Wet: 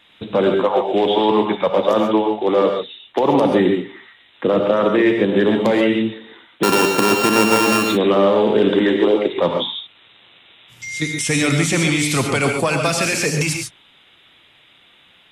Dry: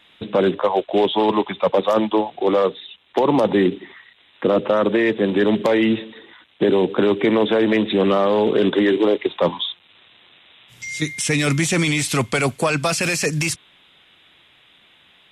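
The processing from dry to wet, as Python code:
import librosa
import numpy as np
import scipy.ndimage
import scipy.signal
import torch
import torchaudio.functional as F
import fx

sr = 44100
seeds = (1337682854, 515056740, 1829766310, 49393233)

y = fx.sample_sort(x, sr, block=32, at=(6.63, 7.83))
y = fx.rev_gated(y, sr, seeds[0], gate_ms=160, shape='rising', drr_db=3.0)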